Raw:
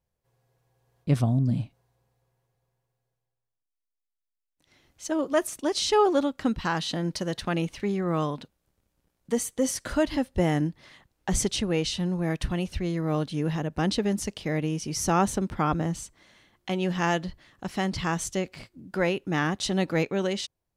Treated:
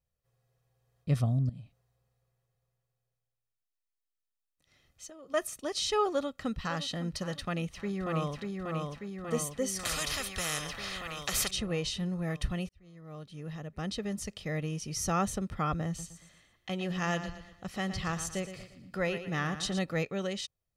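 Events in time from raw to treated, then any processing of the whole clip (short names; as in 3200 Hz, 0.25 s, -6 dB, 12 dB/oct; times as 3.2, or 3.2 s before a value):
1.49–5.34 compressor 10:1, threshold -37 dBFS
6.09–6.8 echo throw 0.56 s, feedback 40%, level -13 dB
7.41–8.39 echo throw 0.59 s, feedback 70%, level -3 dB
9.79–11.51 spectral compressor 4:1
12.69–14.53 fade in
15.87–19.79 feedback echo 0.116 s, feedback 41%, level -10.5 dB
whole clip: bell 690 Hz -4.5 dB 0.86 oct; comb 1.6 ms, depth 49%; gain -5.5 dB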